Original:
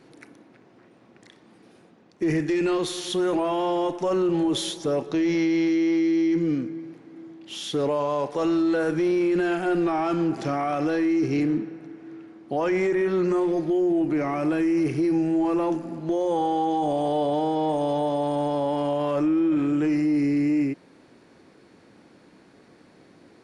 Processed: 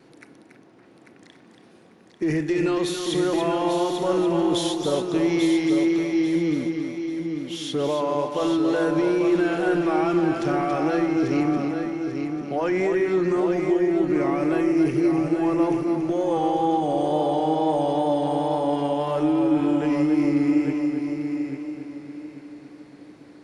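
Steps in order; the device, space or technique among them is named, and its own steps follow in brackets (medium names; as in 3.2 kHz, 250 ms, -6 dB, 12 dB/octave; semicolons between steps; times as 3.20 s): multi-head tape echo (multi-head delay 281 ms, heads first and third, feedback 47%, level -7 dB; wow and flutter 24 cents)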